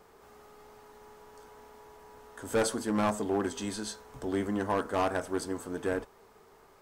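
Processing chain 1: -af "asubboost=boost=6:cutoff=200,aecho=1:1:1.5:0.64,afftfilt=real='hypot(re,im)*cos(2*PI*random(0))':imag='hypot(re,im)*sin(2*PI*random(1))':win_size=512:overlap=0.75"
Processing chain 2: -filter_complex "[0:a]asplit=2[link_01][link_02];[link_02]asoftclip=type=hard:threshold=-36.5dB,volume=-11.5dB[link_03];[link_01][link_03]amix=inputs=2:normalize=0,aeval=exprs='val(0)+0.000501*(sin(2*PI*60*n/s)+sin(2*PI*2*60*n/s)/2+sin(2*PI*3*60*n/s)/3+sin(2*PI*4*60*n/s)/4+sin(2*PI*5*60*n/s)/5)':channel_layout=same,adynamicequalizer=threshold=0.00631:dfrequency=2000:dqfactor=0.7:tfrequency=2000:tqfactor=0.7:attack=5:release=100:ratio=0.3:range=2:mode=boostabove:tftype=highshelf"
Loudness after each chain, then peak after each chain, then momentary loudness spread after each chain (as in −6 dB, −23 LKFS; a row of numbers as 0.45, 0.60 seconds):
−35.5, −30.5 LKFS; −17.5, −16.5 dBFS; 10, 15 LU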